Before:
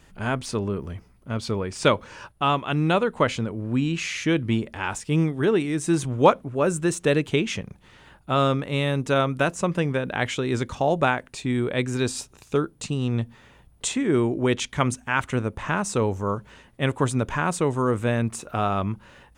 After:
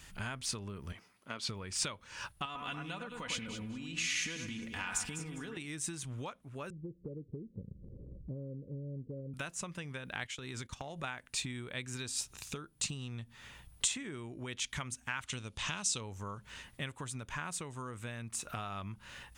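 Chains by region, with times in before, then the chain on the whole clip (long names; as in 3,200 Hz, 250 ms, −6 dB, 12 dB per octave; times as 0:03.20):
0:00.92–0:01.49: high-pass filter 310 Hz + high-shelf EQ 7,300 Hz −10.5 dB
0:02.45–0:05.57: downward compressor 10 to 1, threshold −26 dBFS + comb filter 4.1 ms, depth 56% + delay that swaps between a low-pass and a high-pass 101 ms, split 2,200 Hz, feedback 53%, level −4.5 dB
0:06.70–0:09.34: Butterworth low-pass 550 Hz 96 dB per octave + upward compression, threshold −34 dBFS
0:10.24–0:11.04: noise gate −32 dBFS, range −16 dB + downward compressor 4 to 1, threshold −31 dBFS
0:15.26–0:16.01: low-pass filter 7,700 Hz + high shelf with overshoot 2,500 Hz +9 dB, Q 1.5
whole clip: downward compressor 16 to 1, threshold −34 dBFS; guitar amp tone stack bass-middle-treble 5-5-5; level +12 dB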